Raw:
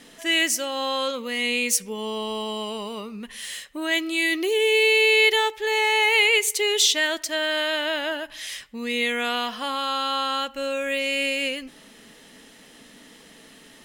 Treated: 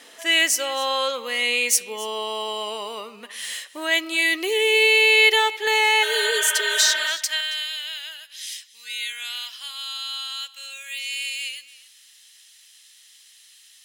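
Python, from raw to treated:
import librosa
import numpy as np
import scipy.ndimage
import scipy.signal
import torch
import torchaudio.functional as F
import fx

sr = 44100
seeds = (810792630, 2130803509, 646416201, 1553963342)

p1 = fx.filter_sweep_highpass(x, sr, from_hz=520.0, to_hz=3800.0, start_s=6.25, end_s=7.71, q=0.8)
p2 = fx.spec_repair(p1, sr, seeds[0], start_s=6.05, length_s=1.0, low_hz=550.0, high_hz=3600.0, source='after')
p3 = fx.dmg_tone(p2, sr, hz=1500.0, level_db=-54.0, at=(8.83, 9.45), fade=0.02)
p4 = p3 + fx.echo_single(p3, sr, ms=275, db=-19.0, dry=0)
p5 = fx.band_squash(p4, sr, depth_pct=40, at=(5.67, 7.41))
y = p5 * 10.0 ** (3.0 / 20.0)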